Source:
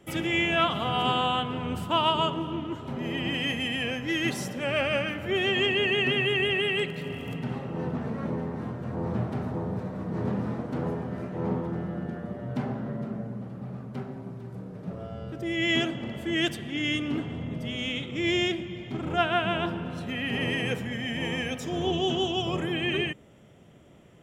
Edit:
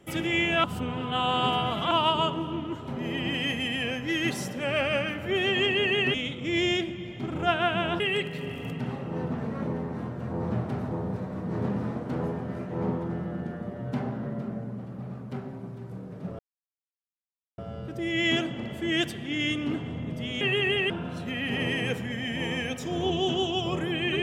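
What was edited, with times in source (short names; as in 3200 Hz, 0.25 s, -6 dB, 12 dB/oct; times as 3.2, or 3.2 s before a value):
0.64–1.91 reverse
6.14–6.63 swap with 17.85–19.71
15.02 insert silence 1.19 s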